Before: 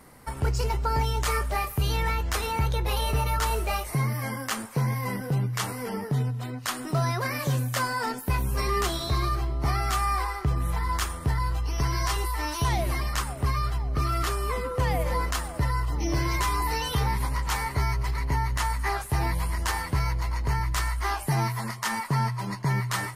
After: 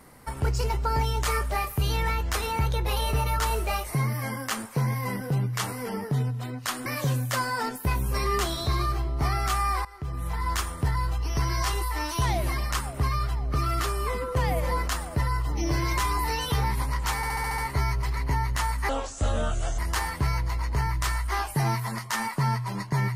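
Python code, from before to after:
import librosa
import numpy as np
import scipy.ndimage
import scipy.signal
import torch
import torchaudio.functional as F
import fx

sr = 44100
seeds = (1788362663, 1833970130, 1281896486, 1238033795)

y = fx.edit(x, sr, fx.cut(start_s=6.86, length_s=0.43),
    fx.fade_in_from(start_s=10.28, length_s=0.66, floor_db=-18.5),
    fx.stutter(start_s=17.59, slice_s=0.07, count=7),
    fx.speed_span(start_s=18.9, length_s=0.61, speed=0.68), tone=tone)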